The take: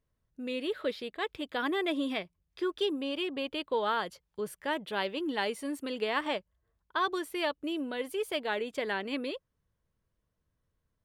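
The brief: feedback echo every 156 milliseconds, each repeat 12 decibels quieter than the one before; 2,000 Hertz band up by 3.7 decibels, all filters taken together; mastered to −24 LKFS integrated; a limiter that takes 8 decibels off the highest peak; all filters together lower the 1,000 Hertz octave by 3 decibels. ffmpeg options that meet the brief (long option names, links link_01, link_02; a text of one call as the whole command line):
ffmpeg -i in.wav -af "equalizer=frequency=1000:width_type=o:gain=-5.5,equalizer=frequency=2000:width_type=o:gain=6.5,alimiter=limit=-23dB:level=0:latency=1,aecho=1:1:156|312|468:0.251|0.0628|0.0157,volume=10dB" out.wav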